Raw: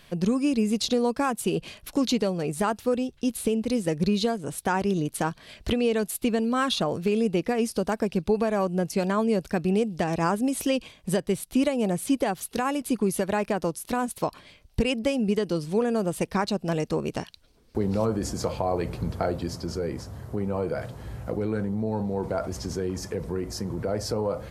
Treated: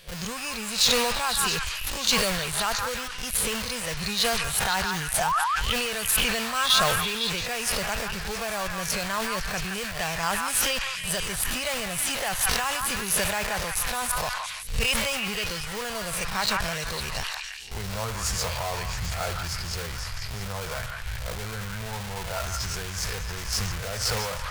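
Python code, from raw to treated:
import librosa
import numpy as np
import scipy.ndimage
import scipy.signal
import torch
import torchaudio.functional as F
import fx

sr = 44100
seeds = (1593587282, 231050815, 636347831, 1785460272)

p1 = fx.spec_swells(x, sr, rise_s=0.3)
p2 = fx.schmitt(p1, sr, flips_db=-30.5)
p3 = p1 + F.gain(torch.from_numpy(p2), -6.0).numpy()
p4 = fx.spec_paint(p3, sr, seeds[0], shape='rise', start_s=5.18, length_s=0.21, low_hz=620.0, high_hz=1400.0, level_db=-20.0)
p5 = fx.tone_stack(p4, sr, knobs='10-0-10')
p6 = p5 + fx.echo_stepped(p5, sr, ms=169, hz=1300.0, octaves=0.7, feedback_pct=70, wet_db=-1.5, dry=0)
p7 = fx.sustainer(p6, sr, db_per_s=28.0)
y = F.gain(torch.from_numpy(p7), 5.0).numpy()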